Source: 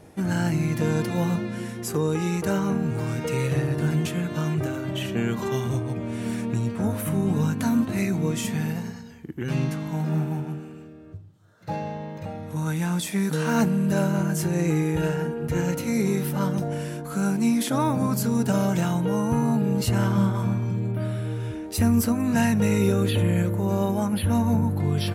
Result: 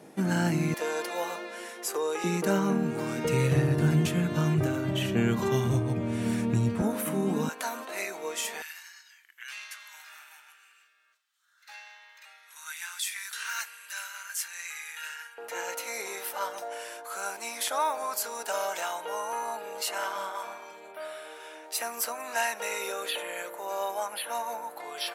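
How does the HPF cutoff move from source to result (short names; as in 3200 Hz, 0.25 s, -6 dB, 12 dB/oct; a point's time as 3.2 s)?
HPF 24 dB/oct
170 Hz
from 0.74 s 460 Hz
from 2.24 s 190 Hz
from 3.25 s 54 Hz
from 6.82 s 220 Hz
from 7.49 s 500 Hz
from 8.62 s 1500 Hz
from 15.38 s 600 Hz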